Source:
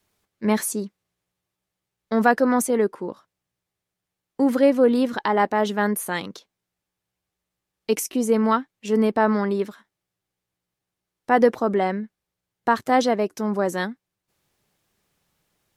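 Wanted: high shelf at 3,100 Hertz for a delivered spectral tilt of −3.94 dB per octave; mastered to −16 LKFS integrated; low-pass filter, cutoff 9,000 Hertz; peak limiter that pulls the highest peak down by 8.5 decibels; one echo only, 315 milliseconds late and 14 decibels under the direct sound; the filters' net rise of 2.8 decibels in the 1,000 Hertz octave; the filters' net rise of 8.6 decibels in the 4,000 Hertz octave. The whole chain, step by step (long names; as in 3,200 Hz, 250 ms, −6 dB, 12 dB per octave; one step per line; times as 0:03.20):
low-pass filter 9,000 Hz
parametric band 1,000 Hz +3 dB
high-shelf EQ 3,100 Hz +3.5 dB
parametric band 4,000 Hz +8 dB
brickwall limiter −10 dBFS
single-tap delay 315 ms −14 dB
level +6.5 dB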